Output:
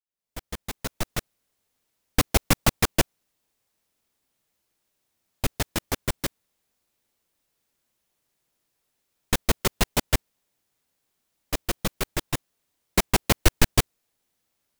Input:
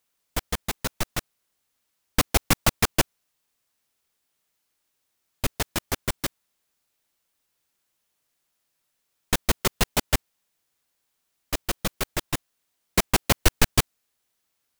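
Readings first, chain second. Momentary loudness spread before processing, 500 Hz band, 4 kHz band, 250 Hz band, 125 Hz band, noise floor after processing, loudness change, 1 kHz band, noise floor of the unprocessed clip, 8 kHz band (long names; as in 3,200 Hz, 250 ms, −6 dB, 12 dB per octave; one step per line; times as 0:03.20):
11 LU, +0.5 dB, −1.0 dB, +1.0 dB, +1.0 dB, −79 dBFS, 0.0 dB, −1.0 dB, −77 dBFS, −1.0 dB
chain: fade in at the beginning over 1.20 s
in parallel at −11 dB: decimation without filtering 28×
on the sum: level −1 dB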